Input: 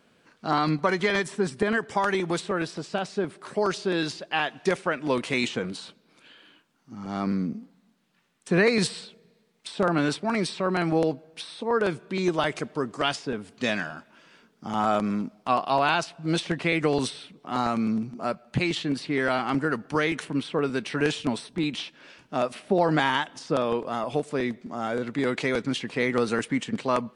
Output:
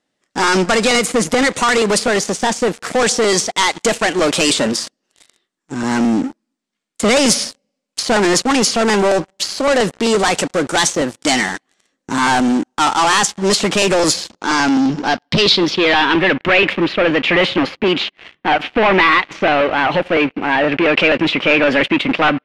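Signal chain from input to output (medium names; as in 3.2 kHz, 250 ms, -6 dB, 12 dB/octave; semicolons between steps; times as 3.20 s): waveshaping leveller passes 5; wide varispeed 1.21×; low-pass sweep 8.1 kHz -> 2.6 kHz, 14.04–16.52 s; trim -2 dB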